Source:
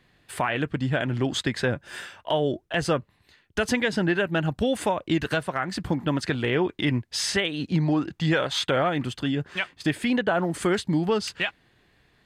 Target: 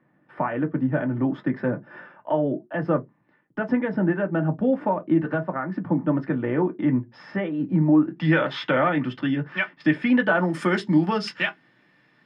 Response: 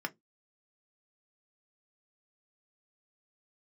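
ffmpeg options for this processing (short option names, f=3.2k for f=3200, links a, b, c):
-filter_complex "[0:a]asetnsamples=n=441:p=0,asendcmd='8.16 lowpass f 3100;10.2 lowpass f 9200',lowpass=1k[a];[1:a]atrim=start_sample=2205[b];[a][b]afir=irnorm=-1:irlink=0"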